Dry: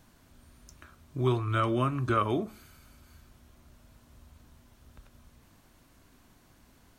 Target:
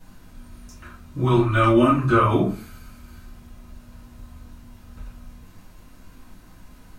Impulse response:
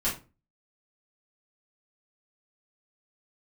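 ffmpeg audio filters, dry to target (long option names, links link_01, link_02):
-filter_complex "[0:a]asettb=1/sr,asplit=3[link_01][link_02][link_03];[link_01]atrim=end=1.334[link_04];[link_02]atrim=start=1.33:end=1.95,asetpts=PTS-STARTPTS,afade=type=in:duration=0.004:curve=qsin,afade=type=out:start_time=0.616:duration=0.004:curve=qsin,aecho=1:1:3.4:0.74,atrim=end_sample=27342[link_05];[link_03]atrim=start=1.946[link_06];[link_04][link_05]acrossfade=duration=0.004:curve1=hsin:curve2=qsin[link_07];[link_07][link_06]acrossfade=duration=0.004:curve1=qsin:curve2=hsin[link_08];[1:a]atrim=start_sample=2205,asetrate=39249,aresample=44100[link_09];[link_08][link_09]afir=irnorm=-1:irlink=0"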